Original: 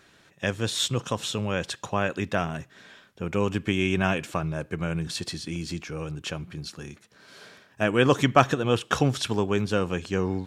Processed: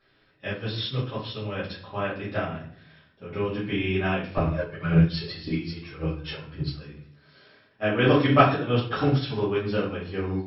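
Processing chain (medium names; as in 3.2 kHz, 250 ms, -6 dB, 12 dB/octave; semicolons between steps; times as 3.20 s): 4.37–6.84 s: phaser 1.8 Hz, delay 2.5 ms, feedback 77%; brick-wall FIR low-pass 5.5 kHz; simulated room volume 76 m³, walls mixed, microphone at 2.3 m; upward expansion 1.5:1, over -22 dBFS; trim -7.5 dB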